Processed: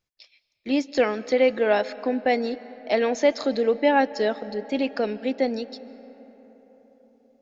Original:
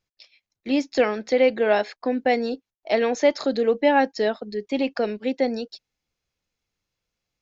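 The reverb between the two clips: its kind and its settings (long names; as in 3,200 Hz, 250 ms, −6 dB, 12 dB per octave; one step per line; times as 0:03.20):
comb and all-pass reverb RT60 4.8 s, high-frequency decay 0.4×, pre-delay 105 ms, DRR 17 dB
level −1 dB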